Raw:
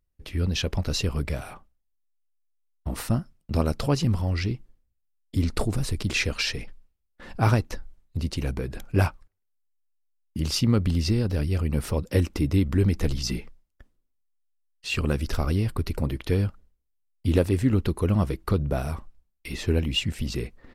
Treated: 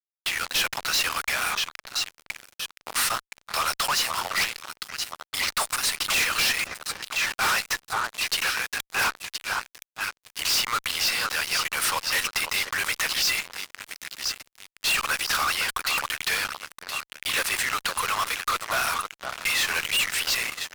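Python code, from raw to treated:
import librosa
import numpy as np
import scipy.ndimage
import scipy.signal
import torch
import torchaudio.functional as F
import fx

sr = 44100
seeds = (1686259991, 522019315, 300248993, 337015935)

y = scipy.signal.sosfilt(scipy.signal.butter(4, 1100.0, 'highpass', fs=sr, output='sos'), x)
y = fx.leveller(y, sr, passes=3)
y = fx.high_shelf(y, sr, hz=4300.0, db=-3.5)
y = fx.echo_alternate(y, sr, ms=510, hz=1500.0, feedback_pct=71, wet_db=-12.0)
y = fx.fuzz(y, sr, gain_db=37.0, gate_db=-44.0)
y = y * 10.0 ** (-8.0 / 20.0)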